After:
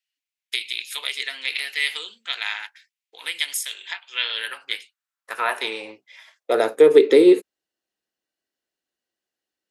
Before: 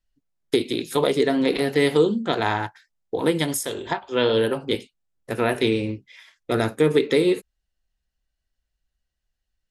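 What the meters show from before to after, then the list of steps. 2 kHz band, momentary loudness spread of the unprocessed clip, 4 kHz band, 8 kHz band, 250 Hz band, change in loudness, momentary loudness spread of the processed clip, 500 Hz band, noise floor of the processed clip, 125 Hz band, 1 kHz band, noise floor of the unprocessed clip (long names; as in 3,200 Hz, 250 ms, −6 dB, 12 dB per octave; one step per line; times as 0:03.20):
+2.5 dB, 10 LU, +3.5 dB, +0.5 dB, −2.0 dB, +1.5 dB, 18 LU, +1.5 dB, below −85 dBFS, below −20 dB, −3.0 dB, −80 dBFS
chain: high-pass filter sweep 2,400 Hz → 330 Hz, 0:04.12–0:07.30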